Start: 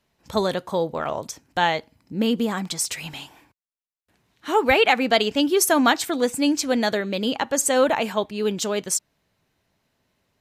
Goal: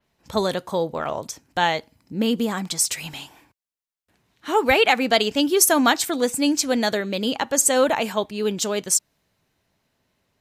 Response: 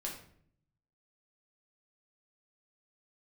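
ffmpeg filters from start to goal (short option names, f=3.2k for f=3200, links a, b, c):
-af "adynamicequalizer=threshold=0.02:dfrequency=4400:dqfactor=0.7:tfrequency=4400:tqfactor=0.7:attack=5:release=100:ratio=0.375:range=2.5:mode=boostabove:tftype=highshelf"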